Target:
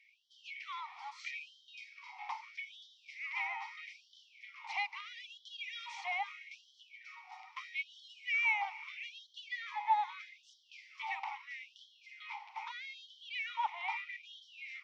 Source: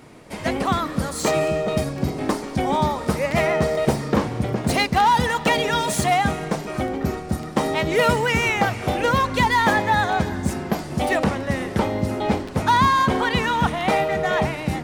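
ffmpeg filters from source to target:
-filter_complex "[0:a]lowshelf=f=410:g=-10,alimiter=limit=-13.5dB:level=0:latency=1:release=492,asplit=3[a][b][c];[a]bandpass=f=300:t=q:w=8,volume=0dB[d];[b]bandpass=f=870:t=q:w=8,volume=-6dB[e];[c]bandpass=f=2.24k:t=q:w=8,volume=-9dB[f];[d][e][f]amix=inputs=3:normalize=0,highpass=f=230:w=0.5412,highpass=f=230:w=1.3066,equalizer=f=620:t=q:w=4:g=-3,equalizer=f=1.9k:t=q:w=4:g=4,equalizer=f=3.3k:t=q:w=4:g=4,equalizer=f=5.6k:t=q:w=4:g=8,lowpass=f=6k:w=0.5412,lowpass=f=6k:w=1.3066,afftfilt=real='re*gte(b*sr/1024,680*pow(3000/680,0.5+0.5*sin(2*PI*0.78*pts/sr)))':imag='im*gte(b*sr/1024,680*pow(3000/680,0.5+0.5*sin(2*PI*0.78*pts/sr)))':win_size=1024:overlap=0.75,volume=3dB"

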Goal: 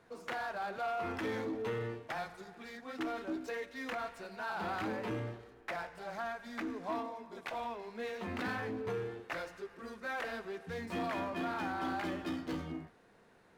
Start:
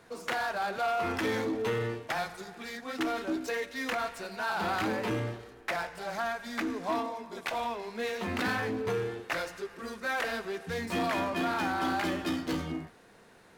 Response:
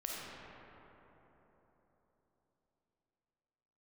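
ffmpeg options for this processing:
-af "highshelf=f=3.4k:g=-7.5,volume=-6dB"

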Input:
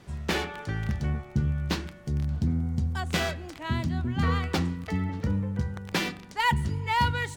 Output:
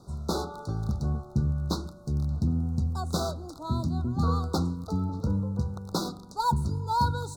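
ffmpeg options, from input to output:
-af "asuperstop=centerf=2300:order=20:qfactor=0.99"

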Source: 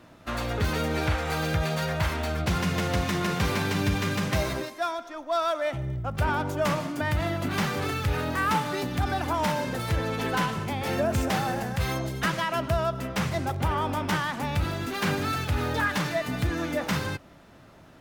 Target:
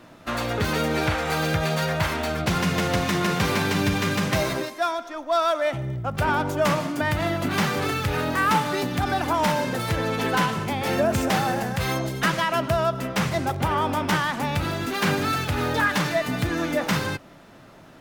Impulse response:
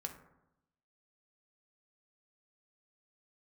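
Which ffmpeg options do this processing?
-af "equalizer=f=65:t=o:w=0.9:g=-11,volume=4.5dB"

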